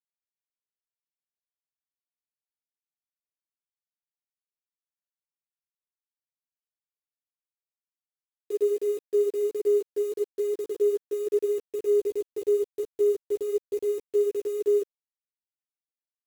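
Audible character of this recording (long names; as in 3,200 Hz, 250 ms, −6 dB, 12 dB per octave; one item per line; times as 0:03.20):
a quantiser's noise floor 8 bits, dither none
a shimmering, thickened sound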